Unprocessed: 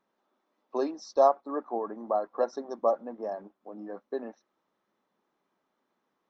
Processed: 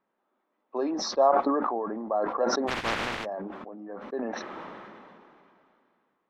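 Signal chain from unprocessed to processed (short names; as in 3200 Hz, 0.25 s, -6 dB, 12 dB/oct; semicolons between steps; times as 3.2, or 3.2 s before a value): 2.67–3.24 spectral contrast lowered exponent 0.11; Chebyshev low-pass 2300 Hz, order 2; sustainer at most 23 dB/s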